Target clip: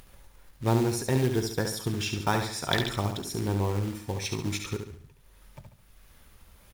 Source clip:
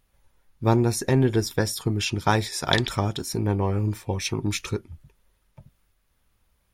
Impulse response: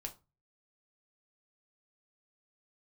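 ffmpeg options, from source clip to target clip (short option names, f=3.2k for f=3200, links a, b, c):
-filter_complex "[0:a]acompressor=mode=upward:threshold=-33dB:ratio=2.5,acrusher=bits=4:mode=log:mix=0:aa=0.000001,asplit=2[a][b];[b]aecho=0:1:70|140|210|280|350:0.473|0.199|0.0835|0.0351|0.0147[c];[a][c]amix=inputs=2:normalize=0,volume=-5.5dB"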